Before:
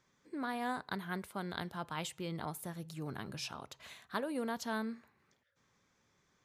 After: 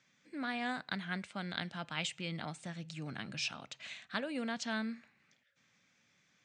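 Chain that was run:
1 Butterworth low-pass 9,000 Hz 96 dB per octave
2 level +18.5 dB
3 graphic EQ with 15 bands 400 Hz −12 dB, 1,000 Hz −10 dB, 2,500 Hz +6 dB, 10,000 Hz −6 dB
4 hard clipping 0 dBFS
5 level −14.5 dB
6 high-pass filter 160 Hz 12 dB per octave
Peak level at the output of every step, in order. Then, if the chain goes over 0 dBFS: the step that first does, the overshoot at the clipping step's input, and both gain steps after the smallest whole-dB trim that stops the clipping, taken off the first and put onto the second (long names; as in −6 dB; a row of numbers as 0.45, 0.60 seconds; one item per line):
−21.0, −2.5, −4.5, −4.5, −19.0, −19.0 dBFS
no step passes full scale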